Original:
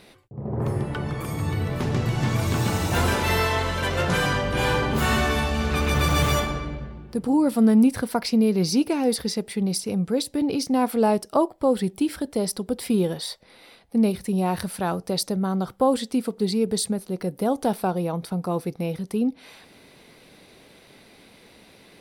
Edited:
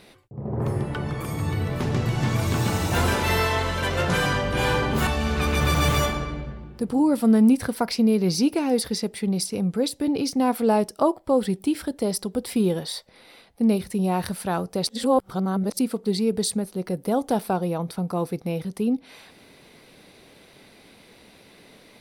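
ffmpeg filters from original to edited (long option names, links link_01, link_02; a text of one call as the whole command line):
ffmpeg -i in.wav -filter_complex "[0:a]asplit=4[link_01][link_02][link_03][link_04];[link_01]atrim=end=5.072[link_05];[link_02]atrim=start=5.408:end=15.212[link_06];[link_03]atrim=start=15.208:end=16.132,asetpts=PTS-STARTPTS,areverse[link_07];[link_04]atrim=start=16.128[link_08];[link_05][link_06]acrossfade=duration=0.004:curve1=hsin:curve2=hsin[link_09];[link_09][link_07]acrossfade=duration=0.004:curve1=hsin:curve2=hsin[link_10];[link_10][link_08]acrossfade=duration=0.004:curve1=hsin:curve2=hsin" out.wav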